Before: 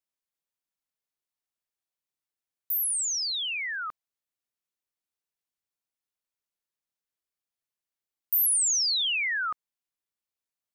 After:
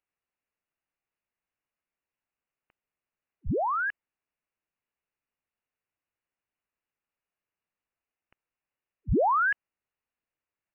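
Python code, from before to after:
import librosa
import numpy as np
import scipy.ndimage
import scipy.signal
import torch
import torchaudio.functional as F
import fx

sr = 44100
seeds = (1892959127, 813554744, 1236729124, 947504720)

y = fx.freq_invert(x, sr, carrier_hz=2900)
y = y * 10.0 ** (5.0 / 20.0)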